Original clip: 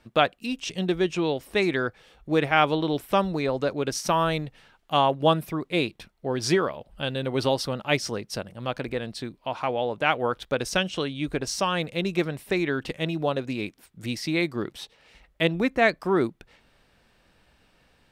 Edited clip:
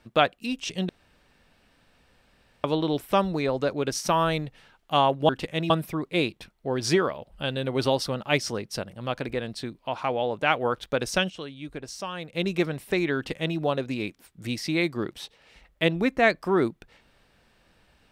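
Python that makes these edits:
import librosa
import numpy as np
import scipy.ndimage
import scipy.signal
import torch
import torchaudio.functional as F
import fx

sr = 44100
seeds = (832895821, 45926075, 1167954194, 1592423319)

y = fx.edit(x, sr, fx.room_tone_fill(start_s=0.89, length_s=1.75),
    fx.clip_gain(start_s=10.89, length_s=1.05, db=-9.0),
    fx.duplicate(start_s=12.75, length_s=0.41, to_s=5.29), tone=tone)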